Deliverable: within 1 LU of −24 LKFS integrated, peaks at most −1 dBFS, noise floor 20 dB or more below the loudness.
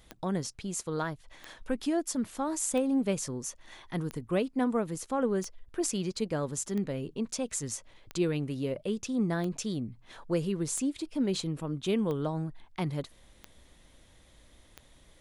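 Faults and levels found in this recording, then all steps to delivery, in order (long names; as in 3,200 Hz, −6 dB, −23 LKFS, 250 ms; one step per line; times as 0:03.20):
number of clicks 12; integrated loudness −32.5 LKFS; sample peak −15.0 dBFS; target loudness −24.0 LKFS
→ click removal
level +8.5 dB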